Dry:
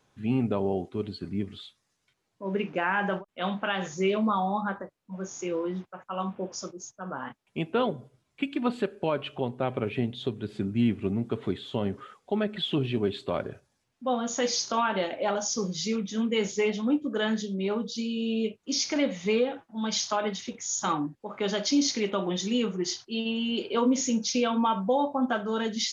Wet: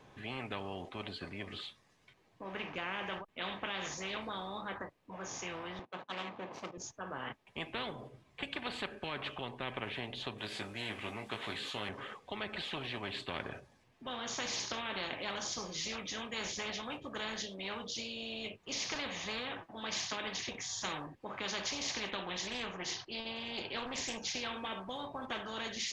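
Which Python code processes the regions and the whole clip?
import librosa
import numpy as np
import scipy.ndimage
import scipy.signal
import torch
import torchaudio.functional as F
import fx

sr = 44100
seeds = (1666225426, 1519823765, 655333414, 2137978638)

y = fx.chain(x, sr, fx.median_filter(points=25),
    fx.bandpass_edges(low_hz=170.0, high_hz=5600.0), at=(5.79, 6.78))
y = fx.chain(y, sr, fx.tilt_eq(slope=2.5),
    fx.doubler(ms=19.0, db=-5.0), at=(10.38, 11.89))
y = fx.chain(y, sr, fx.air_absorb(metres=53.0),
    fx.doppler_dist(depth_ms=0.21), at=(22.11, 24.18))
y = fx.bass_treble(y, sr, bass_db=-1, treble_db=-12)
y = fx.notch(y, sr, hz=1400.0, q=7.2)
y = fx.spectral_comp(y, sr, ratio=4.0)
y = y * librosa.db_to_amplitude(-6.0)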